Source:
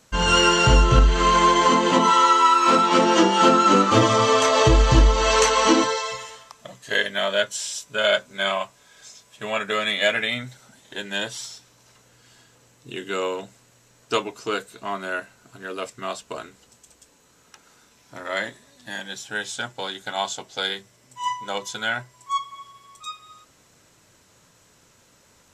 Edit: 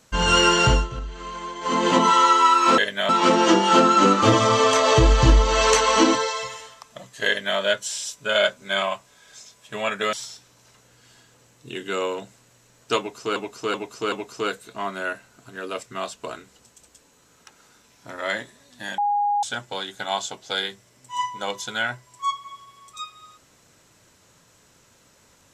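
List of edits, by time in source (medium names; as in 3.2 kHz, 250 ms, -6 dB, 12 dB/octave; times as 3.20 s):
0.65–1.85 s: dip -17 dB, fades 0.24 s
6.96–7.27 s: copy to 2.78 s
9.82–11.34 s: delete
14.19–14.57 s: loop, 4 plays
19.05–19.50 s: bleep 821 Hz -18.5 dBFS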